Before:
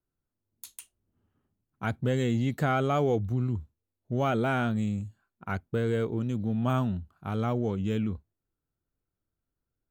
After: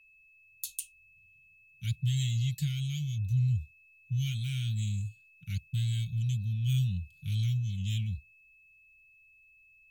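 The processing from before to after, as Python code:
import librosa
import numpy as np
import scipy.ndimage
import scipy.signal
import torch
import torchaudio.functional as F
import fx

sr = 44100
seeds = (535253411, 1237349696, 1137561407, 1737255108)

y = fx.rider(x, sr, range_db=4, speed_s=0.5)
y = scipy.signal.sosfilt(scipy.signal.cheby2(4, 60, [320.0, 1200.0], 'bandstop', fs=sr, output='sos'), y)
y = y + 0.5 * np.pad(y, (int(5.7 * sr / 1000.0), 0))[:len(y)]
y = y + 10.0 ** (-65.0 / 20.0) * np.sin(2.0 * np.pi * 2600.0 * np.arange(len(y)) / sr)
y = y * 10.0 ** (6.5 / 20.0)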